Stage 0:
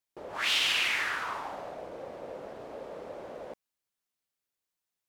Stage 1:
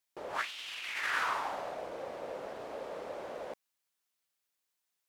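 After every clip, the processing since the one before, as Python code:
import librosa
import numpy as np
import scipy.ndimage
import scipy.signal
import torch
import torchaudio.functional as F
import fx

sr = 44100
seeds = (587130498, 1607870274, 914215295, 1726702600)

y = fx.low_shelf(x, sr, hz=450.0, db=-8.5)
y = fx.over_compress(y, sr, threshold_db=-34.0, ratio=-0.5)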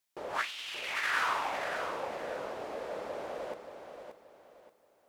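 y = fx.echo_feedback(x, sr, ms=578, feedback_pct=32, wet_db=-8)
y = F.gain(torch.from_numpy(y), 2.0).numpy()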